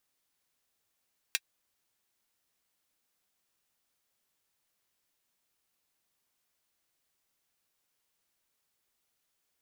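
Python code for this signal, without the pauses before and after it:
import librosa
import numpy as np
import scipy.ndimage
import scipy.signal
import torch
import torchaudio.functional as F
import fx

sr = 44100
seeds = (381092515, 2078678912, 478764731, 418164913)

y = fx.drum_hat(sr, length_s=0.24, from_hz=2100.0, decay_s=0.05)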